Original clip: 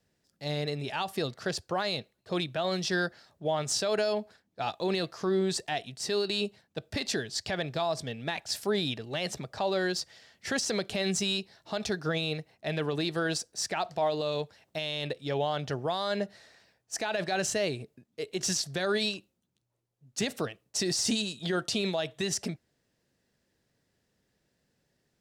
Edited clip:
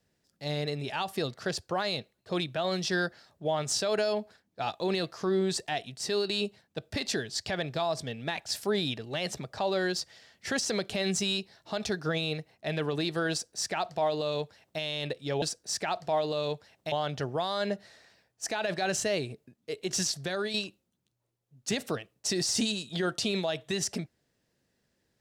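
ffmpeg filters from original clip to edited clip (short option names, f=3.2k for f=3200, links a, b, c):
-filter_complex "[0:a]asplit=4[a][b][c][d];[a]atrim=end=15.422[e];[b]atrim=start=13.308:end=14.812[f];[c]atrim=start=15.418:end=19.04,asetpts=PTS-STARTPTS,afade=t=out:st=3.252:d=0.37:silence=0.446684[g];[d]atrim=start=19.04,asetpts=PTS-STARTPTS,afade=t=in:d=0.004:c=hsin:silence=0.446684[h];[e][f]acrossfade=d=0.004:c1=hsin:c2=hsin[i];[g][h]concat=n=2:v=0:a=1[j];[i][j]acrossfade=d=0.004:c1=hsin:c2=hsin"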